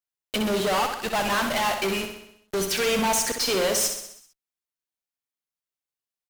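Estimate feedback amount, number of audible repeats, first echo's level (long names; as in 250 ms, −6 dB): 57%, 6, −7.0 dB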